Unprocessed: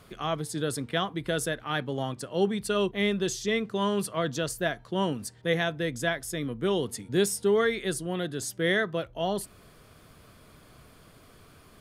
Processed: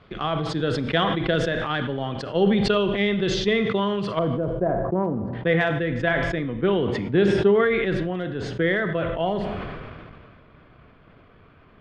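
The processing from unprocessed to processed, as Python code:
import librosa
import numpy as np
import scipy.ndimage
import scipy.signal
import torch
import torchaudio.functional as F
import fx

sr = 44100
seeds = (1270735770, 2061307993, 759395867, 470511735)

y = fx.lowpass(x, sr, hz=fx.steps((0.0, 3700.0), (4.19, 1000.0), (5.33, 2800.0)), slope=24)
y = fx.transient(y, sr, attack_db=8, sustain_db=3)
y = fx.rev_schroeder(y, sr, rt60_s=0.73, comb_ms=33, drr_db=12.5)
y = fx.sustainer(y, sr, db_per_s=25.0)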